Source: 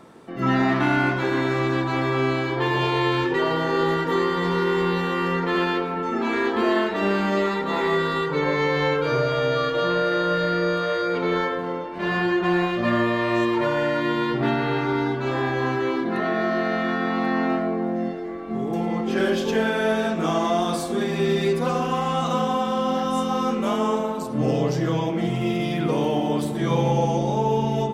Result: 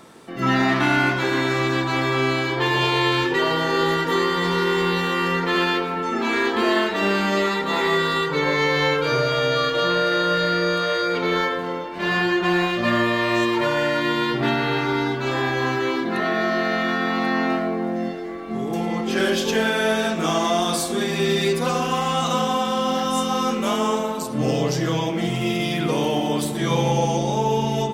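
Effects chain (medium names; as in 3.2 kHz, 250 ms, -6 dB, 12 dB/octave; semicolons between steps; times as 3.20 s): treble shelf 2.2 kHz +10 dB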